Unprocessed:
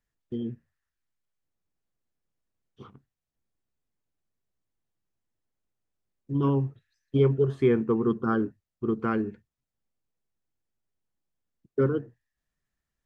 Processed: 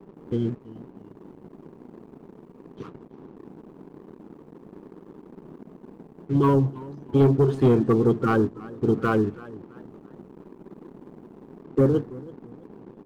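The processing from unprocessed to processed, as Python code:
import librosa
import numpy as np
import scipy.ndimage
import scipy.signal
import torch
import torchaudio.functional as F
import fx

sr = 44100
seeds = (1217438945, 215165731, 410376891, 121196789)

y = fx.spec_quant(x, sr, step_db=30)
y = fx.dmg_noise_band(y, sr, seeds[0], low_hz=150.0, high_hz=420.0, level_db=-49.0)
y = fx.leveller(y, sr, passes=2)
y = fx.dynamic_eq(y, sr, hz=2200.0, q=0.95, threshold_db=-40.0, ratio=4.0, max_db=-5)
y = fx.echo_warbled(y, sr, ms=329, feedback_pct=36, rate_hz=2.8, cents=112, wet_db=-20)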